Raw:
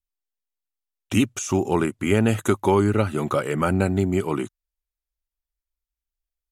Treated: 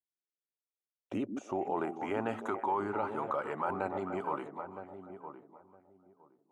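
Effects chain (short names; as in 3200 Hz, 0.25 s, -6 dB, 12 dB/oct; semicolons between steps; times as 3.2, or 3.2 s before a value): delay with a stepping band-pass 0.147 s, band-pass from 240 Hz, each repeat 1.4 oct, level -6.5 dB; band-pass sweep 330 Hz -> 910 Hz, 0.04–2.29; darkening echo 0.963 s, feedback 20%, low-pass 850 Hz, level -10 dB; in parallel at +2 dB: negative-ratio compressor -32 dBFS, ratio -1; on the sum: gain -8.5 dB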